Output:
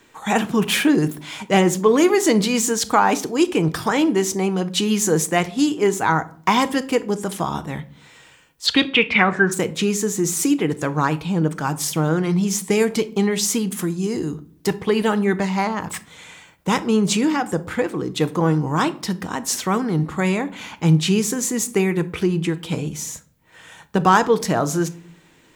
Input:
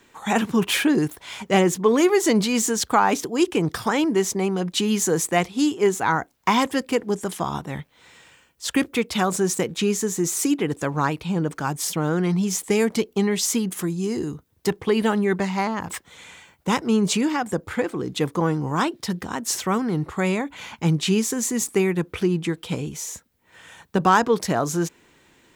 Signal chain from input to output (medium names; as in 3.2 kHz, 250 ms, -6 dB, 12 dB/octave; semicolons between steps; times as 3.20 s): 8.66–9.51 s: resonant low-pass 4.5 kHz -> 1.4 kHz, resonance Q 11; reverberation RT60 0.50 s, pre-delay 6 ms, DRR 11.5 dB; trim +2 dB